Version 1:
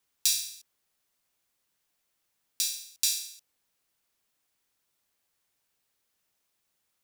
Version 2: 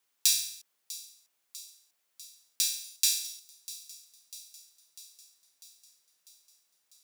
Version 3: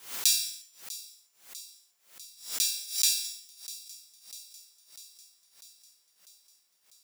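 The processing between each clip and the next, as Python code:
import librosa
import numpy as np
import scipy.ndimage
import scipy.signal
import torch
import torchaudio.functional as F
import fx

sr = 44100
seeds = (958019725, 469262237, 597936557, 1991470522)

y1 = fx.highpass(x, sr, hz=350.0, slope=6)
y1 = fx.echo_wet_highpass(y1, sr, ms=647, feedback_pct=64, hz=3300.0, wet_db=-16.5)
y1 = y1 * 10.0 ** (1.0 / 20.0)
y2 = fx.rev_gated(y1, sr, seeds[0], gate_ms=220, shape='falling', drr_db=6.0)
y2 = fx.pre_swell(y2, sr, db_per_s=130.0)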